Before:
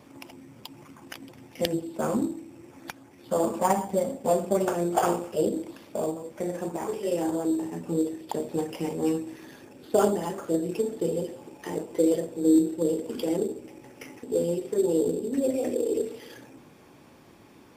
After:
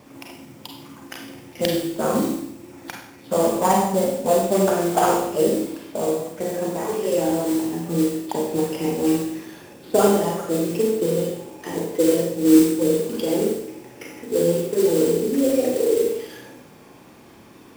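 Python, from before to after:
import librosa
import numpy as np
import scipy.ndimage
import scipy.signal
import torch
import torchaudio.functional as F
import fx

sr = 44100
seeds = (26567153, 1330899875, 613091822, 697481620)

y = fx.mod_noise(x, sr, seeds[0], snr_db=17)
y = fx.rev_schroeder(y, sr, rt60_s=0.69, comb_ms=32, drr_db=0.5)
y = F.gain(torch.from_numpy(y), 3.5).numpy()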